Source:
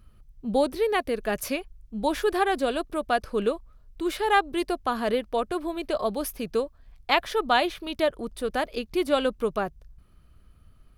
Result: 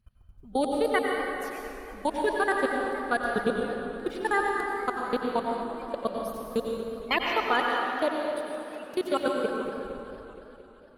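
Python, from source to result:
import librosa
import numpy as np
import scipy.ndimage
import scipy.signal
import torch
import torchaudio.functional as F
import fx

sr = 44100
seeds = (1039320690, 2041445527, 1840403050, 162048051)

y = fx.spec_quant(x, sr, step_db=30)
y = fx.highpass(y, sr, hz=250.0, slope=12, at=(7.34, 9.51))
y = fx.level_steps(y, sr, step_db=24)
y = fx.rev_plate(y, sr, seeds[0], rt60_s=2.6, hf_ratio=0.6, predelay_ms=80, drr_db=-0.5)
y = fx.echo_warbled(y, sr, ms=231, feedback_pct=70, rate_hz=2.8, cents=184, wet_db=-16.0)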